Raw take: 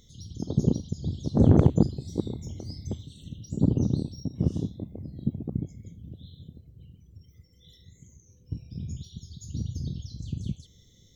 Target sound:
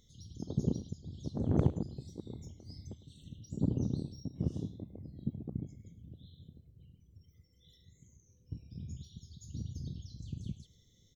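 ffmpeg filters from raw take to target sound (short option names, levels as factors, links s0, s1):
-filter_complex "[0:a]asettb=1/sr,asplit=3[s0][s1][s2];[s0]atrim=end=0.864[s3];[s1]atrim=start=0.86:end=3.08,asetpts=PTS-STARTPTS,afade=t=in:d=0.004:c=qsin,afade=t=out:st=2.216:d=0.004:c=qsin,tremolo=f=2.6:d=0.61[s4];[s2]atrim=start=3.076[s5];[s3][s4]acrossfade=d=0.004:c1=hsin:c2=qsin[s6];[s6][s5]acrossfade=d=0.004:c1=qsin:c2=hsin,aecho=1:1:105:0.158,volume=0.376"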